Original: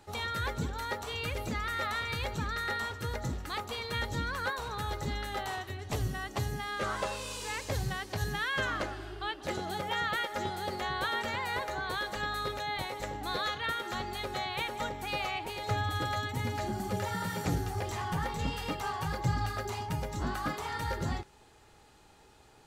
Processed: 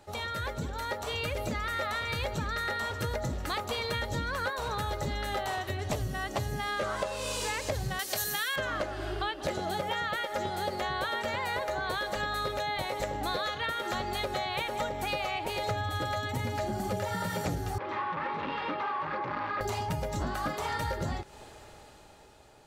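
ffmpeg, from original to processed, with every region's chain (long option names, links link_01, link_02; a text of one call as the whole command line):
ffmpeg -i in.wav -filter_complex "[0:a]asettb=1/sr,asplit=3[link_01][link_02][link_03];[link_01]atrim=end=7.994[link_04];[link_02]atrim=start=7.99:end=8.56,asetpts=PTS-STARTPTS,afade=type=in:duration=0.004:curve=qsin,afade=type=out:start_time=0.566:duration=0.004:curve=qsin,asuperstop=centerf=960:order=4:qfactor=7.5,aemphasis=mode=production:type=riaa[link_05];[link_03]atrim=start=8.556[link_06];[link_04][link_05]acrossfade=duration=0.004:curve1=hsin:curve2=qsin[link_07];[link_07][link_06]acrossfade=duration=0.004:curve1=qsin:curve2=hsin,asettb=1/sr,asplit=3[link_08][link_09][link_10];[link_08]atrim=end=17.784[link_11];[link_09]atrim=start=17.78:end=19.61,asetpts=PTS-STARTPTS,afade=type=in:duration=0.004:curve=qsin,afade=type=out:start_time=1.826:duration=0.004:curve=qsin,volume=36dB,asoftclip=hard,volume=-36dB,asuperstop=centerf=690:order=4:qfactor=7,highpass=270,equalizer=frequency=320:width_type=q:width=4:gain=3,equalizer=frequency=460:width_type=q:width=4:gain=-6,equalizer=frequency=680:width_type=q:width=4:gain=-5,equalizer=frequency=1100:width_type=q:width=4:gain=6,equalizer=frequency=3000:width_type=q:width=4:gain=-6,lowpass=frequency=3100:width=0.5412,lowpass=frequency=3100:width=1.3066[link_12];[link_10]atrim=start=19.606[link_13];[link_11][link_12]acrossfade=duration=0.004:curve1=hsin:curve2=qsin[link_14];[link_14][link_13]acrossfade=duration=0.004:curve1=qsin:curve2=hsin,dynaudnorm=framelen=260:gausssize=11:maxgain=11.5dB,equalizer=frequency=600:width=4.7:gain=9,acompressor=threshold=-30dB:ratio=6" out.wav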